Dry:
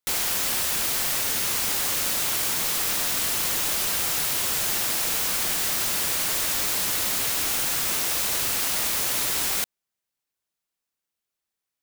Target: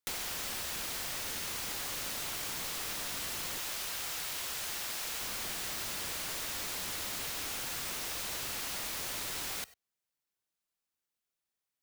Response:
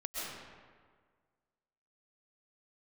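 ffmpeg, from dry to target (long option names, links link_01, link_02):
-filter_complex "[0:a]asettb=1/sr,asplit=3[link_01][link_02][link_03];[link_01]atrim=end=3.584[link_04];[link_02]atrim=start=3.58:end=5.21,asetpts=PTS-STARTPTS,afade=type=in:duration=0.004:curve=qsin,afade=type=out:start_time=1.626:duration=0.004:curve=qsin,lowshelf=frequency=420:gain=-8[link_05];[link_03]atrim=start=5.206[link_06];[link_04][link_05]acrossfade=duration=0.004:curve1=hsin:curve2=qsin[link_07];[link_07][link_06]acrossfade=duration=0.004:curve1=qsin:curve2=hsin,acrossover=split=85|6500[link_08][link_09][link_10];[link_08]acompressor=threshold=-50dB:ratio=4[link_11];[link_09]acompressor=threshold=-35dB:ratio=4[link_12];[link_10]acompressor=threshold=-37dB:ratio=4[link_13];[link_11][link_12][link_13]amix=inputs=3:normalize=0[link_14];[1:a]atrim=start_sample=2205,atrim=end_sample=4410[link_15];[link_14][link_15]afir=irnorm=-1:irlink=0"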